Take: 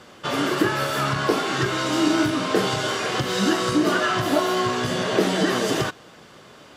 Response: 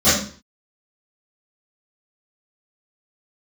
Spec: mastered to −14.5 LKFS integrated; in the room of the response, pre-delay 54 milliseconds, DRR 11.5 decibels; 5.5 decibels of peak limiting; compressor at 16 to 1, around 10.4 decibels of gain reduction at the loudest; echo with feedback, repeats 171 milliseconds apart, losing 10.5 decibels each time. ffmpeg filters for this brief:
-filter_complex "[0:a]acompressor=threshold=-25dB:ratio=16,alimiter=limit=-21dB:level=0:latency=1,aecho=1:1:171|342|513:0.299|0.0896|0.0269,asplit=2[link_01][link_02];[1:a]atrim=start_sample=2205,adelay=54[link_03];[link_02][link_03]afir=irnorm=-1:irlink=0,volume=-34dB[link_04];[link_01][link_04]amix=inputs=2:normalize=0,volume=15dB"

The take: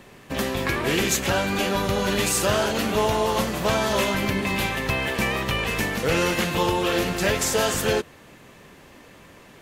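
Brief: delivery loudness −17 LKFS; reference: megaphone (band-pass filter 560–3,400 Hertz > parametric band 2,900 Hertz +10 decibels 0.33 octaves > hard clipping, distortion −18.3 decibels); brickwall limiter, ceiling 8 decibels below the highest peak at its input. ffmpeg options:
ffmpeg -i in.wav -af "alimiter=limit=-16.5dB:level=0:latency=1,highpass=560,lowpass=3400,equalizer=frequency=2900:width_type=o:width=0.33:gain=10,asoftclip=type=hard:threshold=-22dB,volume=10dB" out.wav

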